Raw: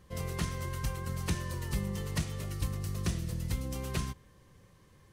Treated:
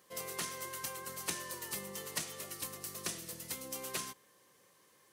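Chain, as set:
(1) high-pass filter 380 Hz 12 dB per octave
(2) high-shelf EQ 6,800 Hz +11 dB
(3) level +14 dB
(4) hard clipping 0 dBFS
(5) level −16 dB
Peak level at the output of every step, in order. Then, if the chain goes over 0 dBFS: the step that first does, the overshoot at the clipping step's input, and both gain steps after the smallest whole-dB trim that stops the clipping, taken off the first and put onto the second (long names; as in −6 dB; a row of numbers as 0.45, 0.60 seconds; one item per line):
−21.0, −17.5, −3.5, −3.5, −19.5 dBFS
no step passes full scale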